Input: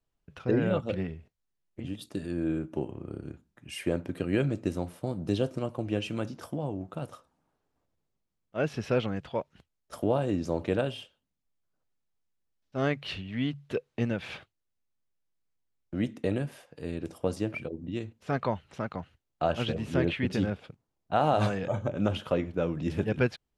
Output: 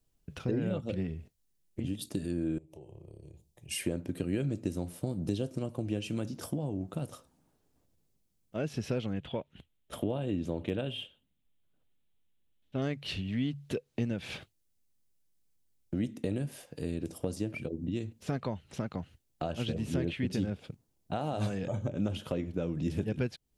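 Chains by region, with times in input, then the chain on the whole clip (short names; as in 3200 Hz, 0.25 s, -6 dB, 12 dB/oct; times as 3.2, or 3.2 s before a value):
2.58–3.71 compressor 5:1, threshold -47 dBFS + fixed phaser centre 600 Hz, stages 4
9.13–12.82 resonant high shelf 4100 Hz -7 dB, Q 3 + hard clip -14.5 dBFS
whole clip: compressor 2.5:1, threshold -39 dBFS; EQ curve 260 Hz 0 dB, 1200 Hz -9 dB, 9500 Hz +4 dB; gain +7 dB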